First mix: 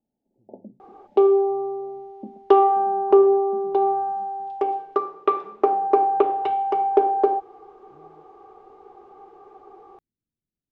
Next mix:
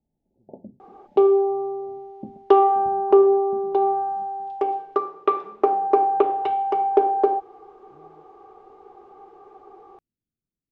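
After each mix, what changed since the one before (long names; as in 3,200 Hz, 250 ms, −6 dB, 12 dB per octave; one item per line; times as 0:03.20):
first sound: remove elliptic high-pass filter 190 Hz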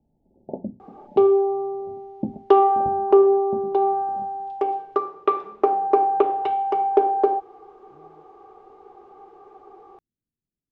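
first sound +10.5 dB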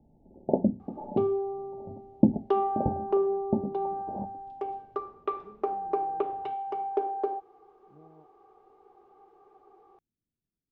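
first sound +7.5 dB
second sound −11.0 dB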